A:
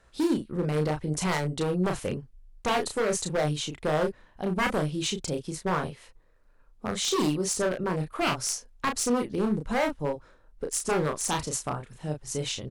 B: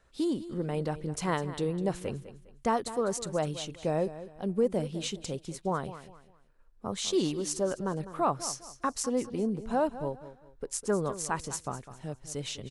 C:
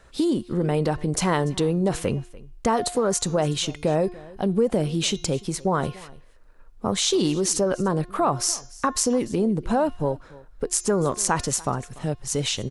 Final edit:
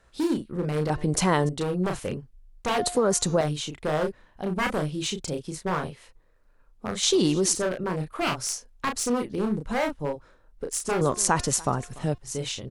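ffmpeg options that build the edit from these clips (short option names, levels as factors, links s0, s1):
-filter_complex "[2:a]asplit=4[s0][s1][s2][s3];[0:a]asplit=5[s4][s5][s6][s7][s8];[s4]atrim=end=0.902[s9];[s0]atrim=start=0.898:end=1.492[s10];[s5]atrim=start=1.488:end=2.782[s11];[s1]atrim=start=2.778:end=3.412[s12];[s6]atrim=start=3.408:end=7.032[s13];[s2]atrim=start=7.028:end=7.552[s14];[s7]atrim=start=7.548:end=11.012[s15];[s3]atrim=start=11.008:end=12.182[s16];[s8]atrim=start=12.178[s17];[s9][s10]acrossfade=d=0.004:c1=hsin:c2=hsin[s18];[s18][s11]acrossfade=d=0.004:c1=hsin:c2=hsin[s19];[s19][s12]acrossfade=d=0.004:c1=hsin:c2=hsin[s20];[s20][s13]acrossfade=d=0.004:c1=hsin:c2=hsin[s21];[s21][s14]acrossfade=d=0.004:c1=hsin:c2=hsin[s22];[s22][s15]acrossfade=d=0.004:c1=hsin:c2=hsin[s23];[s23][s16]acrossfade=d=0.004:c1=hsin:c2=hsin[s24];[s24][s17]acrossfade=d=0.004:c1=hsin:c2=hsin"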